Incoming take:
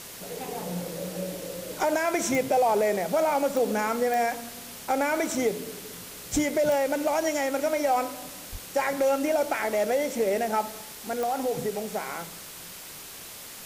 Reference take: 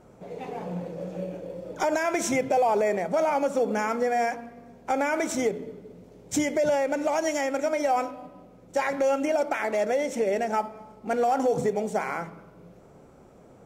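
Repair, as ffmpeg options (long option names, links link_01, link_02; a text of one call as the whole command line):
ffmpeg -i in.wav -filter_complex "[0:a]adeclick=threshold=4,asplit=3[link_01][link_02][link_03];[link_01]afade=type=out:start_time=6.32:duration=0.02[link_04];[link_02]highpass=frequency=140:width=0.5412,highpass=frequency=140:width=1.3066,afade=type=in:start_time=6.32:duration=0.02,afade=type=out:start_time=6.44:duration=0.02[link_05];[link_03]afade=type=in:start_time=6.44:duration=0.02[link_06];[link_04][link_05][link_06]amix=inputs=3:normalize=0,asplit=3[link_07][link_08][link_09];[link_07]afade=type=out:start_time=8.51:duration=0.02[link_10];[link_08]highpass=frequency=140:width=0.5412,highpass=frequency=140:width=1.3066,afade=type=in:start_time=8.51:duration=0.02,afade=type=out:start_time=8.63:duration=0.02[link_11];[link_09]afade=type=in:start_time=8.63:duration=0.02[link_12];[link_10][link_11][link_12]amix=inputs=3:normalize=0,afwtdn=0.0089,asetnsamples=nb_out_samples=441:pad=0,asendcmd='10.81 volume volume 4.5dB',volume=0dB" out.wav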